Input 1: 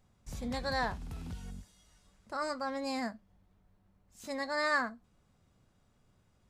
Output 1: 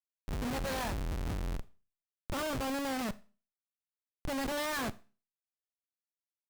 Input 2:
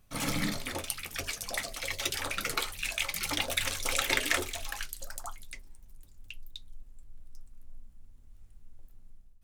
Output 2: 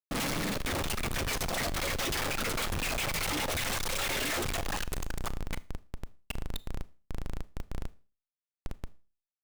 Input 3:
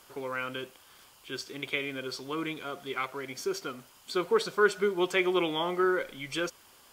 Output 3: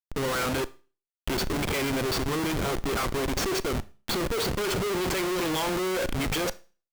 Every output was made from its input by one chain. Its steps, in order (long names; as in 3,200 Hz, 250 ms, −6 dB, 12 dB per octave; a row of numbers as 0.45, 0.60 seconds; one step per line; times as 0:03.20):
tape wow and flutter 32 cents
comparator with hysteresis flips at −40 dBFS
four-comb reverb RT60 0.36 s, combs from 26 ms, DRR 17.5 dB
level +4.5 dB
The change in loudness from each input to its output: −0.5, −0.5, +3.0 LU